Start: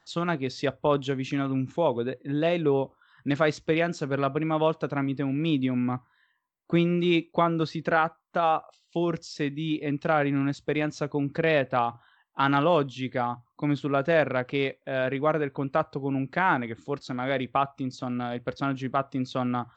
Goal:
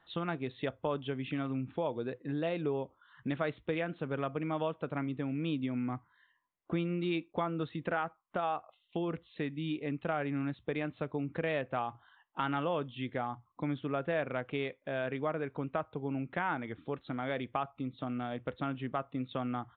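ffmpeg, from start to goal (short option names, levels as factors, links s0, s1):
-af "acompressor=threshold=0.0158:ratio=2,aresample=8000,aresample=44100,volume=0.891"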